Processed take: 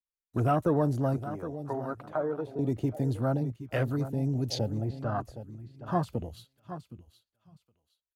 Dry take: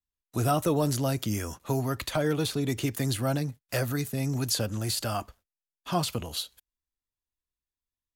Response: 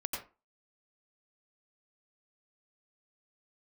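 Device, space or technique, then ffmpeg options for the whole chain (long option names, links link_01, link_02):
behind a face mask: -filter_complex "[0:a]asettb=1/sr,asplit=3[link_01][link_02][link_03];[link_01]atrim=end=1.204[link_04];[link_02]atrim=start=1.2:end=2.59,asetpts=PTS-STARTPTS,afade=type=in:duration=0.004:curve=qsin,afade=type=out:start_time=1.386:duration=0.004:curve=qsin,acrossover=split=380 2300:gain=0.178 1 0.178[link_05][link_06][link_07];[link_05][link_06][link_07]amix=inputs=3:normalize=0[link_08];[link_03]atrim=start=2.586[link_09];[link_04][link_08]acrossfade=duration=0.004:curve1=hsin:curve2=qsin[link_10];[link_10][link_09]acrossfade=duration=0.004:curve1=qsin:curve2=hsin,asettb=1/sr,asplit=3[link_11][link_12][link_13];[link_11]atrim=end=4.814[link_14];[link_12]atrim=start=4.81:end=5.21,asetpts=PTS-STARTPTS,afade=type=in:duration=0.004:curve=qsin,afade=type=out:start_time=0.396:duration=0.004:curve=qsin,lowpass=3000[link_15];[link_13]atrim=start=5.206[link_16];[link_14][link_15]acrossfade=duration=0.004:curve1=hsin:curve2=qsin[link_17];[link_17][link_16]acrossfade=duration=0.004:curve1=qsin:curve2=hsin,highshelf=frequency=2700:gain=-5,aecho=1:1:767|1534|2301:0.251|0.0728|0.0211,afwtdn=0.0158"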